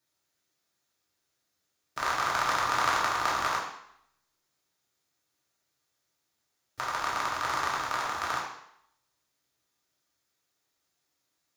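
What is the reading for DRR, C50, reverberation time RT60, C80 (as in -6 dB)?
-4.5 dB, 3.5 dB, 0.70 s, 6.5 dB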